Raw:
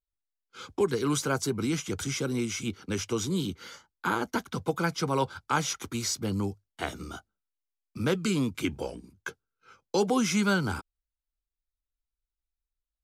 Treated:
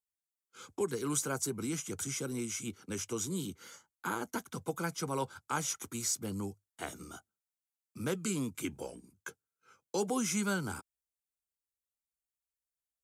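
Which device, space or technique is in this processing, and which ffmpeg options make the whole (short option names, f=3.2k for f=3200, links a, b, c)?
budget condenser microphone: -af "highpass=94,highshelf=f=5.9k:t=q:w=1.5:g=8,volume=-7.5dB"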